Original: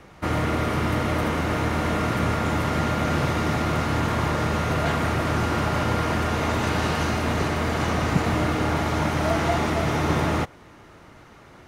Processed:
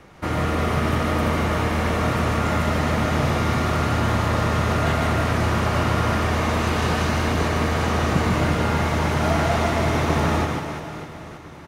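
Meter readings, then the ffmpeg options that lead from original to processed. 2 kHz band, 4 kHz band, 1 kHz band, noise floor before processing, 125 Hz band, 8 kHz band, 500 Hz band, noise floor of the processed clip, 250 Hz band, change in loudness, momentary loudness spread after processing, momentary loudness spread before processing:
+2.0 dB, +2.0 dB, +2.0 dB, −49 dBFS, +3.0 dB, +2.0 dB, +2.0 dB, −38 dBFS, +1.5 dB, +2.0 dB, 3 LU, 1 LU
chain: -af "aecho=1:1:150|345|598.5|928|1356:0.631|0.398|0.251|0.158|0.1"

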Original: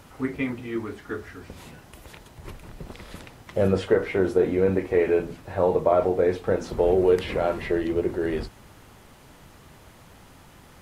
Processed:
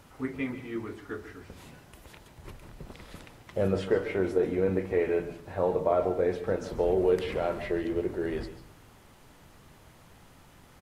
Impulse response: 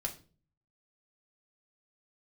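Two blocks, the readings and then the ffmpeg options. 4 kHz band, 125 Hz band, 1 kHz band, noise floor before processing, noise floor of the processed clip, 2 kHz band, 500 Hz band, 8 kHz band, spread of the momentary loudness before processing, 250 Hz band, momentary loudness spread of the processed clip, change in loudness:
−5.5 dB, −5.0 dB, −5.0 dB, −51 dBFS, −56 dBFS, −5.0 dB, −5.5 dB, can't be measured, 21 LU, −5.0 dB, 21 LU, −5.0 dB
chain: -filter_complex "[0:a]asplit=2[link_01][link_02];[link_02]aecho=1:1:6.9:0.65[link_03];[1:a]atrim=start_sample=2205,adelay=138[link_04];[link_03][link_04]afir=irnorm=-1:irlink=0,volume=-14dB[link_05];[link_01][link_05]amix=inputs=2:normalize=0,volume=-5.5dB"

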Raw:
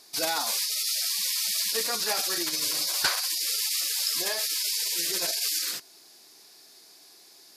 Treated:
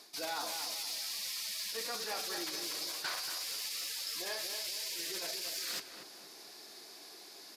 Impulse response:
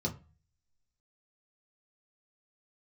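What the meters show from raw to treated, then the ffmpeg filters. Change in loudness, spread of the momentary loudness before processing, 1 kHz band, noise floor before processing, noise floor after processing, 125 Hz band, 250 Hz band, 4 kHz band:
−11.0 dB, 2 LU, −7.5 dB, −54 dBFS, −53 dBFS, can't be measured, −7.5 dB, −10.0 dB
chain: -filter_complex "[0:a]highpass=180,areverse,acompressor=threshold=-36dB:ratio=12,areverse,asoftclip=type=tanh:threshold=-31dB,asplit=2[link_01][link_02];[link_02]adynamicsmooth=sensitivity=6:basefreq=5700,volume=-2dB[link_03];[link_01][link_03]amix=inputs=2:normalize=0,flanger=delay=8.3:depth=6.6:regen=-73:speed=1.4:shape=triangular,asplit=2[link_04][link_05];[link_05]adelay=233,lowpass=frequency=1400:poles=1,volume=-5.5dB,asplit=2[link_06][link_07];[link_07]adelay=233,lowpass=frequency=1400:poles=1,volume=0.46,asplit=2[link_08][link_09];[link_09]adelay=233,lowpass=frequency=1400:poles=1,volume=0.46,asplit=2[link_10][link_11];[link_11]adelay=233,lowpass=frequency=1400:poles=1,volume=0.46,asplit=2[link_12][link_13];[link_13]adelay=233,lowpass=frequency=1400:poles=1,volume=0.46,asplit=2[link_14][link_15];[link_15]adelay=233,lowpass=frequency=1400:poles=1,volume=0.46[link_16];[link_04][link_06][link_08][link_10][link_12][link_14][link_16]amix=inputs=7:normalize=0,volume=3.5dB"

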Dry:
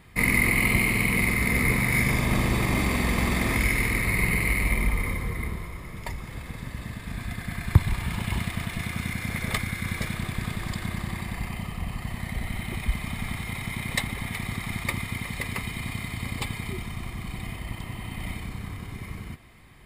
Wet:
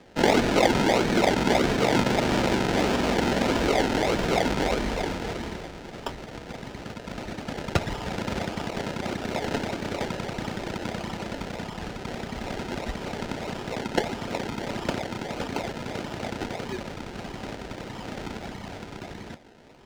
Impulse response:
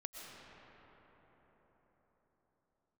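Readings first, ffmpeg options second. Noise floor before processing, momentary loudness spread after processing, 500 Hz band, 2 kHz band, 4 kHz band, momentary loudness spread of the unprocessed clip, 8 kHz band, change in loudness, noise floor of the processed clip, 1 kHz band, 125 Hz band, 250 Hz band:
−40 dBFS, 15 LU, +11.0 dB, −5.0 dB, +4.0 dB, 15 LU, −3.5 dB, 0.0 dB, −41 dBFS, +7.0 dB, −6.0 dB, +3.0 dB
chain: -filter_complex "[0:a]asplit=2[link_01][link_02];[link_02]aeval=exprs='(mod(4.73*val(0)+1,2)-1)/4.73':channel_layout=same,volume=-8dB[link_03];[link_01][link_03]amix=inputs=2:normalize=0,acrusher=samples=30:mix=1:aa=0.000001:lfo=1:lforange=18:lforate=1.6,acrossover=split=220 7000:gain=0.178 1 0.158[link_04][link_05][link_06];[link_04][link_05][link_06]amix=inputs=3:normalize=0,bandreject=frequency=1100:width=6.4,volume=2.5dB"

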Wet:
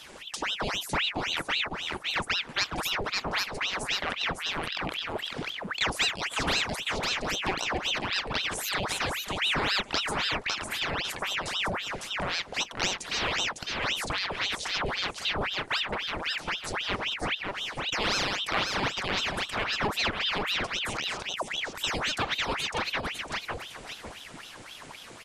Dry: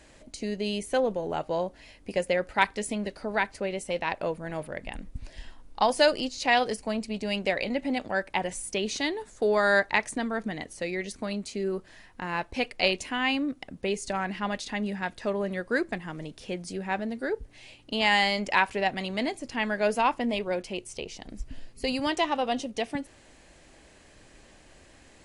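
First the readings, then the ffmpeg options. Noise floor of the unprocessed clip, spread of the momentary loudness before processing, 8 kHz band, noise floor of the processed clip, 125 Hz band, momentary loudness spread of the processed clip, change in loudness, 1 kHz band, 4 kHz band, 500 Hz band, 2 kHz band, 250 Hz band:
−55 dBFS, 13 LU, +4.0 dB, −46 dBFS, +1.0 dB, 6 LU, −0.5 dB, −2.5 dB, +6.5 dB, −8.0 dB, +0.5 dB, −7.5 dB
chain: -filter_complex "[0:a]aecho=1:1:554|1108|1662:0.501|0.105|0.0221,acompressor=threshold=-41dB:ratio=2,asplit=2[link_01][link_02];[link_02]volume=34.5dB,asoftclip=hard,volume=-34.5dB,volume=-10.5dB[link_03];[link_01][link_03]amix=inputs=2:normalize=0,aeval=exprs='val(0)*sin(2*PI*1800*n/s+1800*0.9/3.8*sin(2*PI*3.8*n/s))':channel_layout=same,volume=8dB"

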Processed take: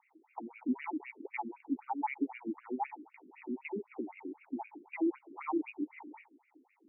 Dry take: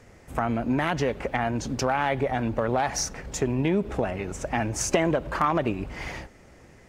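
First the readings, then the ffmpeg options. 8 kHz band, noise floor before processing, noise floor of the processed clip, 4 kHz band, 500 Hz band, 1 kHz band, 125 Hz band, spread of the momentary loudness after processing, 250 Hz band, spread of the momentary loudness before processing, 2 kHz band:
below −40 dB, −52 dBFS, −73 dBFS, below −30 dB, −16.5 dB, −12.5 dB, below −30 dB, 15 LU, −8.5 dB, 8 LU, −15.0 dB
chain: -filter_complex "[0:a]asplit=3[link_01][link_02][link_03];[link_01]bandpass=frequency=300:width_type=q:width=8,volume=0dB[link_04];[link_02]bandpass=frequency=870:width_type=q:width=8,volume=-6dB[link_05];[link_03]bandpass=frequency=2240:width_type=q:width=8,volume=-9dB[link_06];[link_04][link_05][link_06]amix=inputs=3:normalize=0,highshelf=frequency=4700:gain=9.5,afftfilt=real='re*between(b*sr/1024,290*pow(2100/290,0.5+0.5*sin(2*PI*3.9*pts/sr))/1.41,290*pow(2100/290,0.5+0.5*sin(2*PI*3.9*pts/sr))*1.41)':imag='im*between(b*sr/1024,290*pow(2100/290,0.5+0.5*sin(2*PI*3.9*pts/sr))/1.41,290*pow(2100/290,0.5+0.5*sin(2*PI*3.9*pts/sr))*1.41)':win_size=1024:overlap=0.75,volume=5dB"

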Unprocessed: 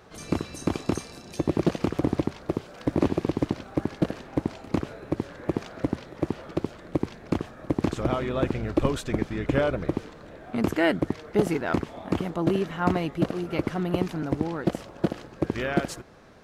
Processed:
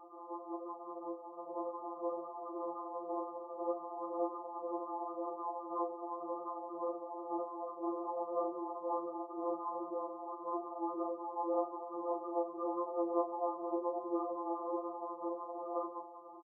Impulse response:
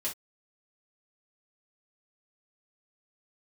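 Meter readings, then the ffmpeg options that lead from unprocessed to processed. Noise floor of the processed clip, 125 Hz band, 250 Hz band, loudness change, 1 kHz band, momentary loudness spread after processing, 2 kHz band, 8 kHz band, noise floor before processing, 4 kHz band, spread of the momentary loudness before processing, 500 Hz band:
−50 dBFS, below −40 dB, −15.5 dB, −11.5 dB, −3.0 dB, 7 LU, below −40 dB, below −35 dB, −46 dBFS, below −40 dB, 7 LU, −9.0 dB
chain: -filter_complex "[0:a]asplit=4[link_01][link_02][link_03][link_04];[link_02]adelay=191,afreqshift=-120,volume=-21dB[link_05];[link_03]adelay=382,afreqshift=-240,volume=-27.7dB[link_06];[link_04]adelay=573,afreqshift=-360,volume=-34.5dB[link_07];[link_01][link_05][link_06][link_07]amix=inputs=4:normalize=0,acompressor=threshold=-25dB:ratio=12,alimiter=level_in=0.5dB:limit=-24dB:level=0:latency=1:release=44,volume=-0.5dB,dynaudnorm=framelen=420:gausssize=7:maxgain=7dB,aeval=exprs='abs(val(0))':channel_layout=same,aphaser=in_gain=1:out_gain=1:delay=1.3:decay=0.49:speed=1.9:type=sinusoidal,asoftclip=type=tanh:threshold=-22dB,afftfilt=real='re*between(b*sr/4096,230,1300)':imag='im*between(b*sr/4096,230,1300)':win_size=4096:overlap=0.75,asplit=2[link_08][link_09];[link_09]adelay=27,volume=-6dB[link_10];[link_08][link_10]amix=inputs=2:normalize=0,afftfilt=real='re*2.83*eq(mod(b,8),0)':imag='im*2.83*eq(mod(b,8),0)':win_size=2048:overlap=0.75,volume=3.5dB"

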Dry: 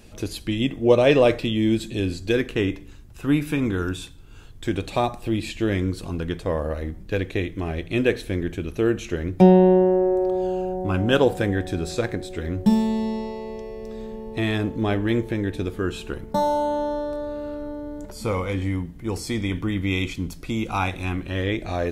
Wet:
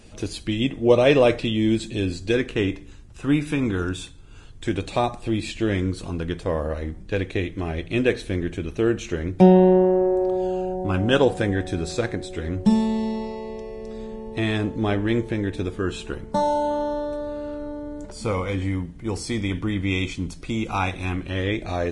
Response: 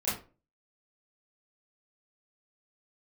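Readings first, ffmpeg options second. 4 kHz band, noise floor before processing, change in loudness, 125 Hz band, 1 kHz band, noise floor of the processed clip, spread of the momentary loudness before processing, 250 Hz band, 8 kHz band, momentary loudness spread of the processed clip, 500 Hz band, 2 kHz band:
+0.5 dB, −41 dBFS, 0.0 dB, 0.0 dB, 0.0 dB, −41 dBFS, 14 LU, 0.0 dB, +1.0 dB, 14 LU, 0.0 dB, +0.5 dB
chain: -ar 22050 -c:a libvorbis -b:a 32k

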